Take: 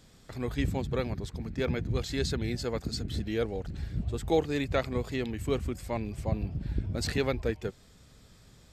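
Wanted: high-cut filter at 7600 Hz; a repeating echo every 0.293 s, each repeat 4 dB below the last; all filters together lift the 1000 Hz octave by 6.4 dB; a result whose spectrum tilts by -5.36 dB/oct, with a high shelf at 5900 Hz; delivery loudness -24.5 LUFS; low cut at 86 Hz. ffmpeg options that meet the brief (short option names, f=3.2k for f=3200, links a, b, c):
-af "highpass=86,lowpass=7.6k,equalizer=f=1k:t=o:g=8.5,highshelf=f=5.9k:g=8.5,aecho=1:1:293|586|879|1172|1465|1758|2051|2344|2637:0.631|0.398|0.25|0.158|0.0994|0.0626|0.0394|0.0249|0.0157,volume=5dB"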